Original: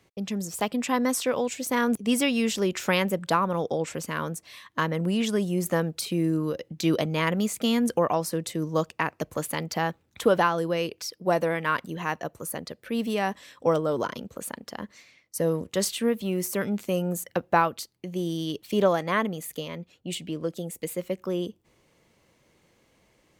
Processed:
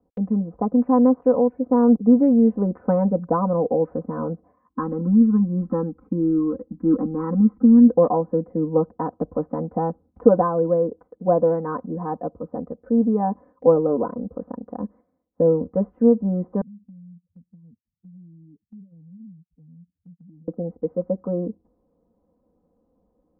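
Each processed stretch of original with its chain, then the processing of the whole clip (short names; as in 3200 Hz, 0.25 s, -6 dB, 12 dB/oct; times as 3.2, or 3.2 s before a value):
4.7–7.88 bell 1300 Hz +3 dB 1 oct + fixed phaser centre 1500 Hz, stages 4 + comb 3.7 ms, depth 77%
16.61–20.48 spectral contrast raised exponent 2.6 + inverse Chebyshev low-pass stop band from 750 Hz, stop band 70 dB + compressor, threshold -50 dBFS
whole clip: Bessel low-pass 620 Hz, order 8; gate -55 dBFS, range -8 dB; comb 4 ms, depth 99%; gain +5 dB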